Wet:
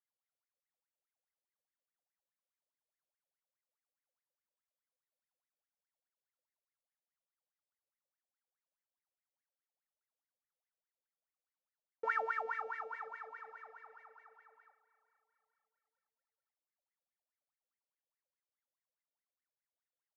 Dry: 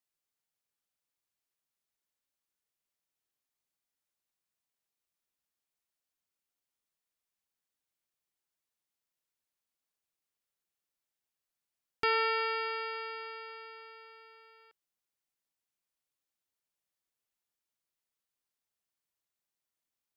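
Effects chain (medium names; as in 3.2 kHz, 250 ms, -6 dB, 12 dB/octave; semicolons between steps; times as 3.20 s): median filter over 15 samples; wah-wah 4.8 Hz 500–2100 Hz, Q 19; feedback delay 451 ms, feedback 52%, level -18.5 dB; trim +11.5 dB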